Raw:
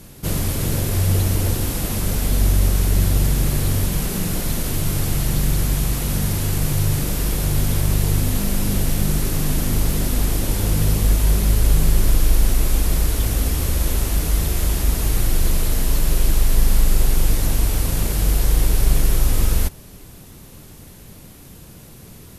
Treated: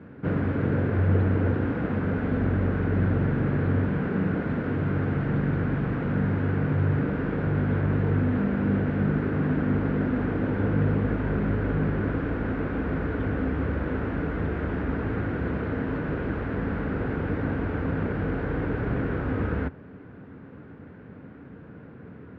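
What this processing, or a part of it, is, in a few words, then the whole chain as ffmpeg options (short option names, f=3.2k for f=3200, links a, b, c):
bass cabinet: -af "highpass=f=76:w=0.5412,highpass=f=76:w=1.3066,equalizer=f=190:t=q:w=4:g=3,equalizer=f=270:t=q:w=4:g=9,equalizer=f=460:t=q:w=4:g=7,equalizer=f=1.5k:t=q:w=4:g=9,lowpass=f=2k:w=0.5412,lowpass=f=2k:w=1.3066,volume=-3.5dB"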